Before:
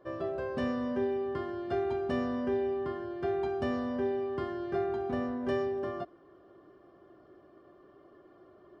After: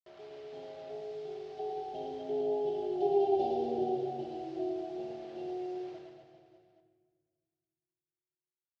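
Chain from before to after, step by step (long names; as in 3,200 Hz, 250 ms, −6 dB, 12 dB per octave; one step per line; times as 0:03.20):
lower of the sound and its delayed copy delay 5.4 ms
source passing by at 0:03.26, 27 m/s, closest 16 metres
elliptic band-stop filter 790–3,000 Hz, stop band 40 dB
comb filter 2.6 ms, depth 73%
bit reduction 9 bits
loudspeaker in its box 110–5,000 Hz, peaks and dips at 150 Hz +4 dB, 250 Hz −3 dB, 650 Hz +9 dB
reverse bouncing-ball delay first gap 110 ms, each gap 1.2×, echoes 5
rectangular room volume 2,000 cubic metres, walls mixed, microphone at 1.2 metres
level −4.5 dB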